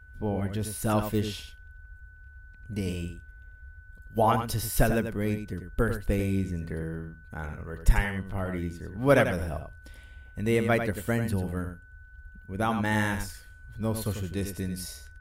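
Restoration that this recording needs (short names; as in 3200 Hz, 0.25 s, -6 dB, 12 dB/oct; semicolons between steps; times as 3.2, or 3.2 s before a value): clip repair -9 dBFS; notch 1500 Hz, Q 30; noise print and reduce 25 dB; inverse comb 93 ms -8 dB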